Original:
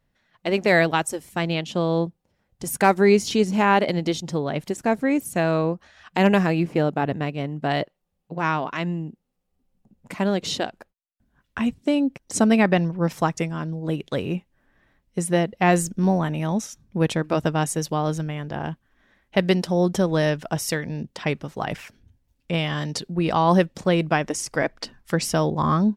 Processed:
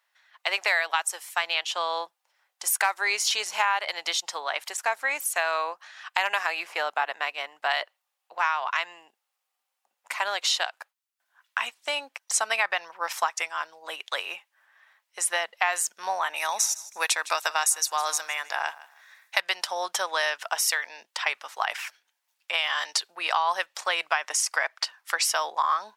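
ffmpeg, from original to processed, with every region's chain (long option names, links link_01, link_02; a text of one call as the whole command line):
ffmpeg -i in.wav -filter_complex "[0:a]asettb=1/sr,asplit=3[link_01][link_02][link_03];[link_01]atrim=end=16.364[link_04];[link_02]atrim=start=16.36:end=19.4,asetpts=PTS-STARTPTS,afade=type=in:duration=0.004:curve=qsin,afade=type=out:start_time=3.036:duration=0.004:curve=qsin,highshelf=frequency=3000:gain=11.5,bandreject=frequency=3100:width=5.2,aecho=1:1:158|316:0.106|0.0265,atrim=end_sample=134064[link_05];[link_03]atrim=start=19.396[link_06];[link_04][link_05]acrossfade=duration=0.004:curve1=hsin:curve2=qsin[link_07];[link_07][link_06]acrossfade=duration=0.004:curve1=qsin:curve2=hsin,highpass=frequency=880:width=0.5412,highpass=frequency=880:width=1.3066,acompressor=threshold=-27dB:ratio=6,volume=6.5dB" out.wav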